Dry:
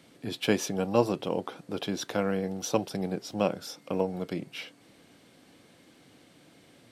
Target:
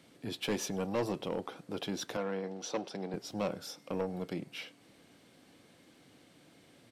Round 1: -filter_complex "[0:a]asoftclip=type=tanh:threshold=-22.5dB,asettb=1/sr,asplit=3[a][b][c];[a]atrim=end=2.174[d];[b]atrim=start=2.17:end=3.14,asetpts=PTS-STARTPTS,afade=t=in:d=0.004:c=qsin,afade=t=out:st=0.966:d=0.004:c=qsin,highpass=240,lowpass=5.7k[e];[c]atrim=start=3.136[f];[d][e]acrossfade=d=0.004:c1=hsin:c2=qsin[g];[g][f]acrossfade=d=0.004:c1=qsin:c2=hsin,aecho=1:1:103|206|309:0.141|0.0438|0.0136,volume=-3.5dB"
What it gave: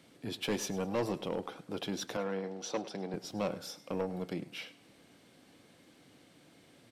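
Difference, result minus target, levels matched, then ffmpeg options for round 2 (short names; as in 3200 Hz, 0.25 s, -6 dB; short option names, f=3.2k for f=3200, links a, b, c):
echo-to-direct +9 dB
-filter_complex "[0:a]asoftclip=type=tanh:threshold=-22.5dB,asettb=1/sr,asplit=3[a][b][c];[a]atrim=end=2.174[d];[b]atrim=start=2.17:end=3.14,asetpts=PTS-STARTPTS,afade=t=in:d=0.004:c=qsin,afade=t=out:st=0.966:d=0.004:c=qsin,highpass=240,lowpass=5.7k[e];[c]atrim=start=3.136[f];[d][e]acrossfade=d=0.004:c1=hsin:c2=qsin[g];[g][f]acrossfade=d=0.004:c1=qsin:c2=hsin,aecho=1:1:103|206:0.0501|0.0155,volume=-3.5dB"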